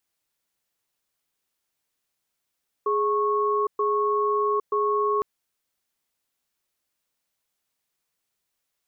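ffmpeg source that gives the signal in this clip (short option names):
-f lavfi -i "aevalsrc='0.0708*(sin(2*PI*417*t)+sin(2*PI*1100*t))*clip(min(mod(t,0.93),0.81-mod(t,0.93))/0.005,0,1)':d=2.36:s=44100"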